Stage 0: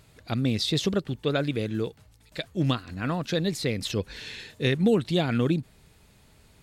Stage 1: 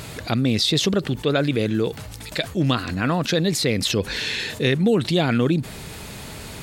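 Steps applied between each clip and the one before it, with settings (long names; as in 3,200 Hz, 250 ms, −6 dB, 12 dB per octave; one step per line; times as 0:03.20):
low-shelf EQ 72 Hz −10 dB
envelope flattener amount 50%
level +3 dB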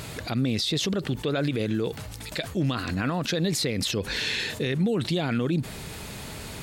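brickwall limiter −15.5 dBFS, peak gain reduction 8 dB
level −2 dB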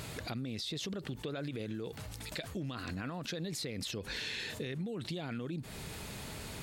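downward compressor, threshold −30 dBFS, peak gain reduction 9.5 dB
level −6 dB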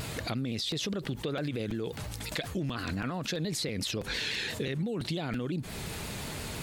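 regular buffer underruns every 0.33 s, samples 256, repeat, from 0:00.71
pitch modulation by a square or saw wave saw down 5.8 Hz, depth 100 cents
level +6 dB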